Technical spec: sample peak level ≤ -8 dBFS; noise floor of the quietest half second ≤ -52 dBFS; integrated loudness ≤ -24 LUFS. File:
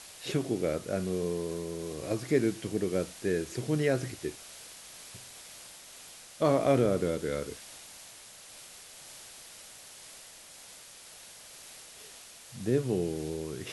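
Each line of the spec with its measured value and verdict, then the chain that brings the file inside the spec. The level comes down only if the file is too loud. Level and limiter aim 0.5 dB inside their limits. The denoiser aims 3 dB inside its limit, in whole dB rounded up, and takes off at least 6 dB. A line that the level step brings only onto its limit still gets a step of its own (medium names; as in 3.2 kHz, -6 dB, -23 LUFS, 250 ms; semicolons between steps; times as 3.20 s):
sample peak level -12.5 dBFS: pass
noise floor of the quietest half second -51 dBFS: fail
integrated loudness -31.0 LUFS: pass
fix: noise reduction 6 dB, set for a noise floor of -51 dBFS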